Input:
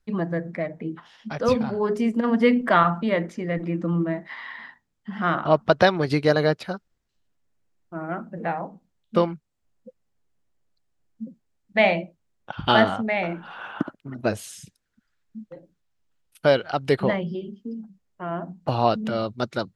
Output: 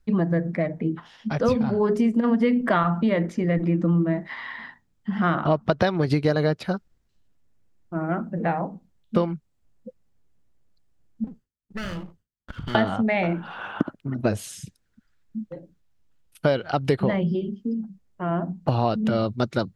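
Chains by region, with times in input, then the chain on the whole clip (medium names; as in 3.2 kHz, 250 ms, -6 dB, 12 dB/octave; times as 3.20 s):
11.24–12.75 s: comb filter that takes the minimum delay 0.64 ms + gate with hold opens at -52 dBFS, closes at -57 dBFS + compression 2.5:1, threshold -41 dBFS
whole clip: bass shelf 310 Hz +8 dB; compression 5:1, threshold -19 dBFS; trim +1.5 dB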